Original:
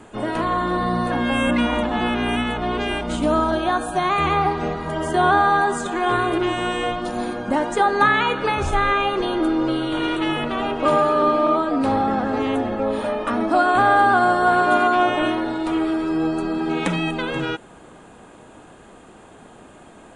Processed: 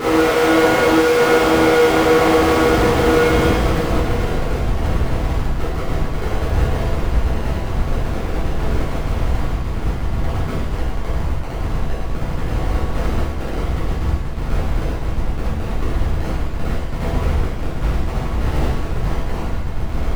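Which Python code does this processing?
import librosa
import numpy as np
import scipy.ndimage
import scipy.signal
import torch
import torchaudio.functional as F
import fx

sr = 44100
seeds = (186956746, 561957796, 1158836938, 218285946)

y = scipy.signal.sosfilt(scipy.signal.ellip(4, 1.0, 80, 260.0, 'highpass', fs=sr, output='sos'), x)
y = fx.over_compress(y, sr, threshold_db=-24.0, ratio=-0.5)
y = fx.graphic_eq(y, sr, hz=(500, 4000, 8000), db=(12, -5, 11))
y = fx.paulstretch(y, sr, seeds[0], factor=8.5, window_s=1.0, from_s=17.45)
y = fx.schmitt(y, sr, flips_db=-28.0)
y = fx.high_shelf(y, sr, hz=3400.0, db=-9.5)
y = fx.rev_shimmer(y, sr, seeds[1], rt60_s=1.0, semitones=7, shimmer_db=-8, drr_db=-11.5)
y = y * librosa.db_to_amplitude(2.0)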